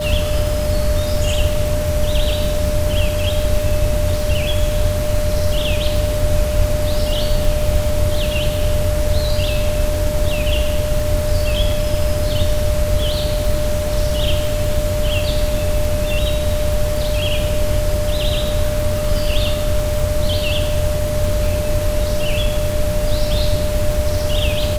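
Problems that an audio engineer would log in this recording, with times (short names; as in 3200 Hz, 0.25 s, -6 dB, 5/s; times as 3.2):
crackle 96/s -23 dBFS
tone 600 Hz -21 dBFS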